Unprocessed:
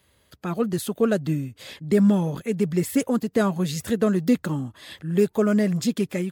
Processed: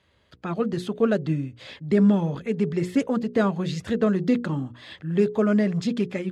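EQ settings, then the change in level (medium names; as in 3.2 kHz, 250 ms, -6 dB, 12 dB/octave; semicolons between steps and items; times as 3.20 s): low-pass 4.2 kHz 12 dB/octave; hum notches 60/120/180/240/300/360/420/480/540 Hz; 0.0 dB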